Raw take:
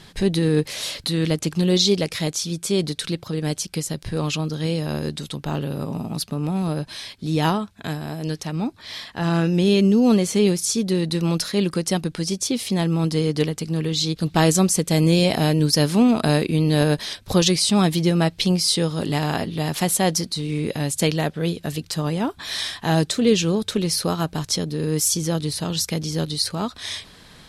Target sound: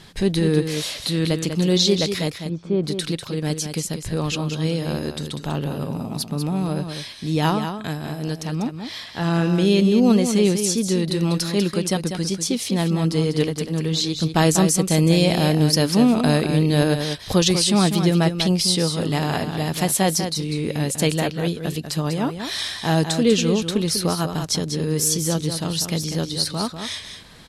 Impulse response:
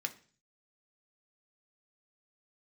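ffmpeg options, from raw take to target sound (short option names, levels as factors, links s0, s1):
-filter_complex "[0:a]asettb=1/sr,asplit=3[s0][s1][s2];[s0]atrim=end=2.304[s3];[s1]atrim=start=2.3:end=2.84,asetpts=PTS-STARTPTS,afade=t=in:d=0.004:c=qsin,afade=t=out:st=0.536:d=0.004:c=qsin,lowpass=1200[s4];[s2]atrim=start=2.836[s5];[s3][s4]acrossfade=d=0.004:c1=hsin:c2=qsin[s6];[s6][s5]acrossfade=d=0.004:c1=qsin:c2=hsin,asplit=2[s7][s8];[s8]aecho=0:1:195:0.398[s9];[s7][s9]amix=inputs=2:normalize=0"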